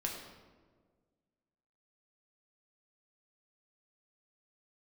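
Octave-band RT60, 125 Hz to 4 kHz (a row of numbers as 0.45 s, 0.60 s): 1.9 s, 1.9 s, 1.8 s, 1.4 s, 1.0 s, 0.85 s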